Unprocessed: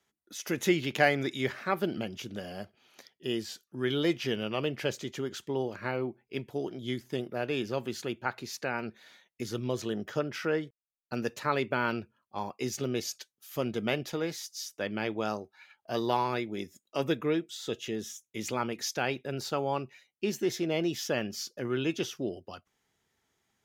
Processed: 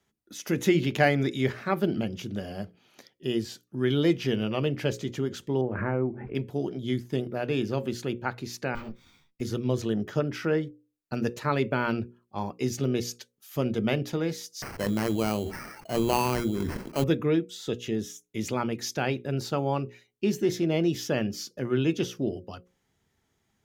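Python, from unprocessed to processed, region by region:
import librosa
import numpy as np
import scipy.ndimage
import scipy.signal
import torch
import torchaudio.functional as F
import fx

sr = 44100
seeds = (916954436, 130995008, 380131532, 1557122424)

y = fx.chain(x, sr, fx.lowpass(hz=1900.0, slope=24),
    fx.pre_swell(db_per_s=44.0), at=(5.61, 6.35))
y = fx.chain(y, sr, fx.lower_of_two(delay_ms=0.86),
    fx.resample_bad(factor=2, down='filtered', up='hold'),
    fx.detune_double(cents=23), at=(8.75, 9.41))
y = fx.chain(y, sr, fx.sample_hold(seeds[0], rate_hz=3600.0, jitter_pct=0),
    fx.sustainer(db_per_s=35.0), at=(14.62, 17.04))
y = fx.low_shelf(y, sr, hz=320.0, db=11.0)
y = fx.hum_notches(y, sr, base_hz=60, count=9)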